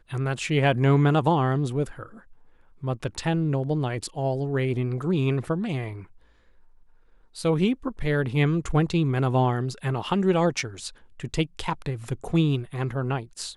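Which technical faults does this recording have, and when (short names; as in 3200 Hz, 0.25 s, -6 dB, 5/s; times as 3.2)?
10.6 gap 2.5 ms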